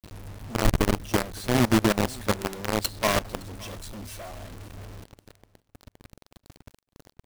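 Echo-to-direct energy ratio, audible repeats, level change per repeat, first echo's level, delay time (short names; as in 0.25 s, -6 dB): -22.5 dB, 1, no steady repeat, -22.5 dB, 0.563 s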